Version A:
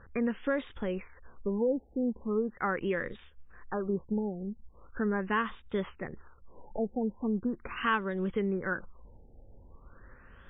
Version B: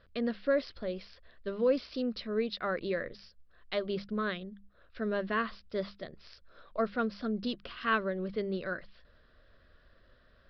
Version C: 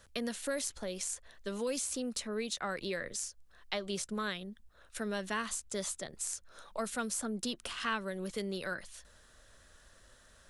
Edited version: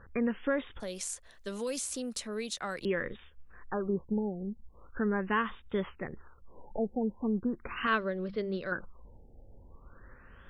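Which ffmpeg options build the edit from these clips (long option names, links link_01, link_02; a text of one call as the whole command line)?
ffmpeg -i take0.wav -i take1.wav -i take2.wav -filter_complex "[0:a]asplit=3[link_01][link_02][link_03];[link_01]atrim=end=0.802[link_04];[2:a]atrim=start=0.798:end=2.852[link_05];[link_02]atrim=start=2.848:end=7.872[link_06];[1:a]atrim=start=7.868:end=8.722[link_07];[link_03]atrim=start=8.718[link_08];[link_04][link_05]acrossfade=duration=0.004:curve1=hsin:curve2=hsin[link_09];[link_09][link_06]acrossfade=duration=0.004:curve1=hsin:curve2=hsin[link_10];[link_10][link_07]acrossfade=duration=0.004:curve1=hsin:curve2=hsin[link_11];[link_11][link_08]acrossfade=duration=0.004:curve1=hsin:curve2=hsin" out.wav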